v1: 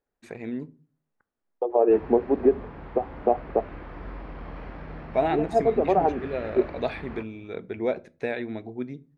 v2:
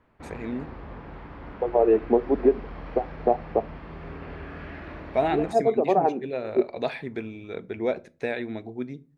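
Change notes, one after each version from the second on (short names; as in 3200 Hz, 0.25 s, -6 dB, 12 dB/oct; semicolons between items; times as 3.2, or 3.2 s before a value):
background: entry -1.70 s; master: add high shelf 4200 Hz +5.5 dB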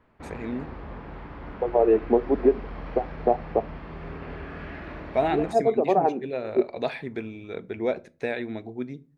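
background: send on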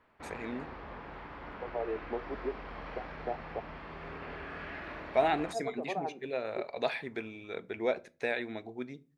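second voice -11.5 dB; master: add low shelf 400 Hz -11.5 dB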